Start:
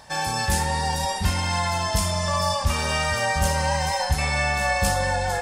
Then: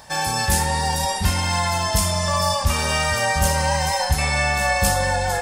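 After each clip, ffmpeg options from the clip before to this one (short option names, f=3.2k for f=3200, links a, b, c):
-af "highshelf=f=11k:g=9,volume=2.5dB"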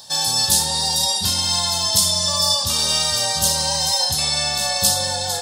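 -af "highpass=f=91:w=0.5412,highpass=f=91:w=1.3066,highshelf=f=2.9k:t=q:w=3:g=9.5,volume=-4.5dB"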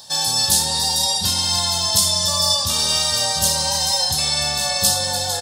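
-af "aecho=1:1:297:0.251"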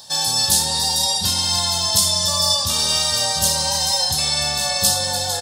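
-af anull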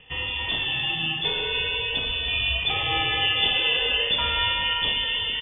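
-af "dynaudnorm=f=250:g=5:m=11.5dB,lowpass=f=3.1k:t=q:w=0.5098,lowpass=f=3.1k:t=q:w=0.6013,lowpass=f=3.1k:t=q:w=0.9,lowpass=f=3.1k:t=q:w=2.563,afreqshift=-3600"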